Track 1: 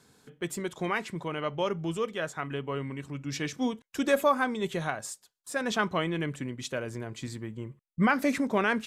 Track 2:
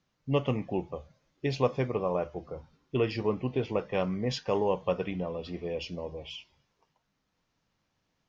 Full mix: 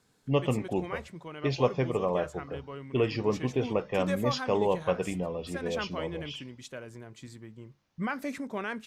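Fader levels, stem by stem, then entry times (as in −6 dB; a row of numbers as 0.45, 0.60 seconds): −8.5, +1.0 decibels; 0.00, 0.00 seconds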